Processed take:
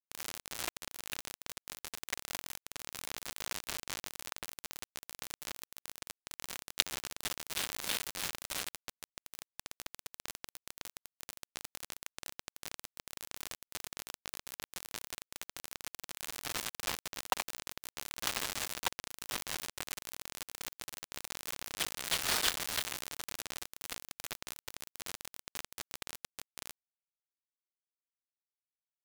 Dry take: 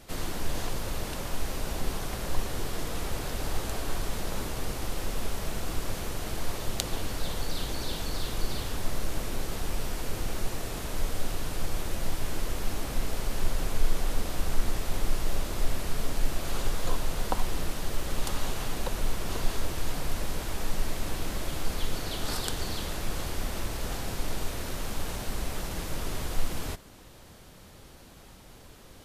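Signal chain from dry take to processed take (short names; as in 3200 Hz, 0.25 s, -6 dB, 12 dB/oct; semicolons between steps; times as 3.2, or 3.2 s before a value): band-pass 2300 Hz, Q 1.2; requantised 6-bit, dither none; gain +10 dB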